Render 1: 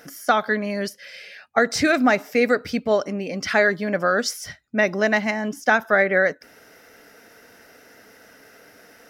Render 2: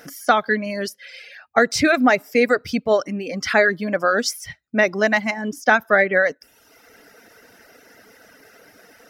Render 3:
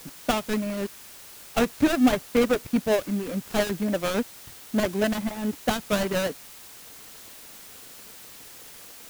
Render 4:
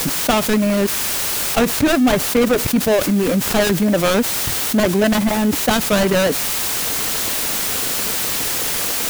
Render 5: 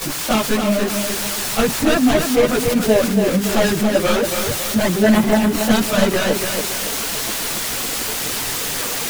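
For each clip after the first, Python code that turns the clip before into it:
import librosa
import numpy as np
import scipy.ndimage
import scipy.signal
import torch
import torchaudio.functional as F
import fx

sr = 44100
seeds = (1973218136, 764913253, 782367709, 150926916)

y1 = fx.dereverb_blind(x, sr, rt60_s=0.88)
y1 = y1 * 10.0 ** (2.5 / 20.0)
y2 = fx.dead_time(y1, sr, dead_ms=0.28)
y2 = fx.low_shelf(y2, sr, hz=480.0, db=10.0)
y2 = fx.dmg_noise_colour(y2, sr, seeds[0], colour='white', level_db=-37.0)
y2 = y2 * 10.0 ** (-8.5 / 20.0)
y3 = fx.env_flatten(y2, sr, amount_pct=70)
y3 = y3 * 10.0 ** (2.5 / 20.0)
y4 = fx.chorus_voices(y3, sr, voices=4, hz=0.71, base_ms=18, depth_ms=4.9, mix_pct=70)
y4 = fx.high_shelf(y4, sr, hz=11000.0, db=-3.5)
y4 = fx.echo_feedback(y4, sr, ms=280, feedback_pct=40, wet_db=-6.0)
y4 = y4 * 10.0 ** (1.0 / 20.0)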